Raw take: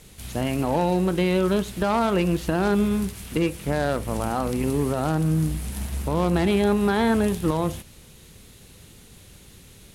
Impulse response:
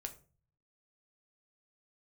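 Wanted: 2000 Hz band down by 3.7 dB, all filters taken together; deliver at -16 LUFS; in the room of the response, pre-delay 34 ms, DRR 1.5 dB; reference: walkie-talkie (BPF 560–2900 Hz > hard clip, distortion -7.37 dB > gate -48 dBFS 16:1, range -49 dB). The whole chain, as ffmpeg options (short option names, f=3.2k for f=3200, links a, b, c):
-filter_complex "[0:a]equalizer=f=2k:t=o:g=-4,asplit=2[a][b];[1:a]atrim=start_sample=2205,adelay=34[c];[b][c]afir=irnorm=-1:irlink=0,volume=1.5dB[d];[a][d]amix=inputs=2:normalize=0,highpass=560,lowpass=2.9k,asoftclip=type=hard:threshold=-26.5dB,agate=range=-49dB:threshold=-48dB:ratio=16,volume=15.5dB"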